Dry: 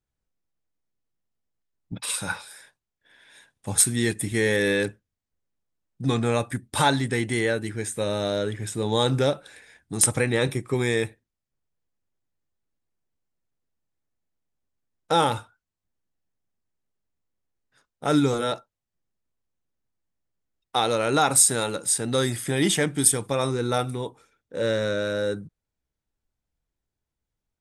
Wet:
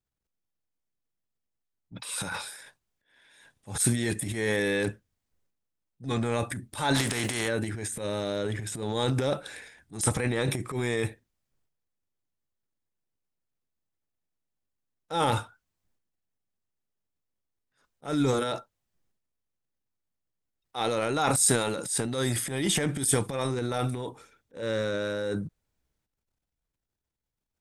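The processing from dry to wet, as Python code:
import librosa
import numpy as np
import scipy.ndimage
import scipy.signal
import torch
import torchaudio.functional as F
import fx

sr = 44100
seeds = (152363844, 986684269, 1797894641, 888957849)

y = fx.spec_flatten(x, sr, power=0.58, at=(6.94, 7.47), fade=0.02)
y = fx.transient(y, sr, attack_db=-10, sustain_db=10)
y = F.gain(torch.from_numpy(y), -4.5).numpy()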